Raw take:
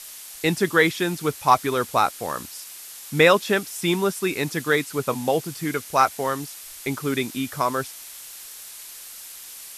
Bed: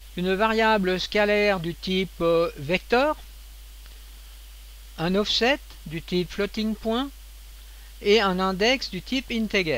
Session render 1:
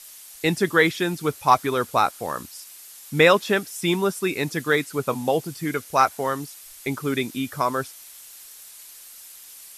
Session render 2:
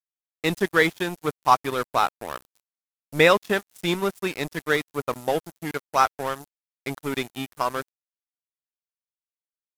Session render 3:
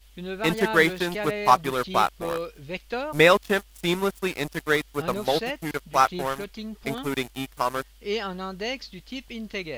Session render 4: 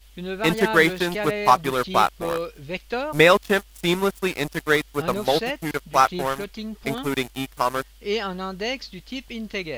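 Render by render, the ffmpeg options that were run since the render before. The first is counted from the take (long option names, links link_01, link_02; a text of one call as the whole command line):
ffmpeg -i in.wav -af "afftdn=noise_reduction=6:noise_floor=-41" out.wav
ffmpeg -i in.wav -af "aeval=exprs='sgn(val(0))*max(abs(val(0))-0.0335,0)':channel_layout=same" out.wav
ffmpeg -i in.wav -i bed.wav -filter_complex "[1:a]volume=-9.5dB[link_01];[0:a][link_01]amix=inputs=2:normalize=0" out.wav
ffmpeg -i in.wav -af "volume=3dB,alimiter=limit=-3dB:level=0:latency=1" out.wav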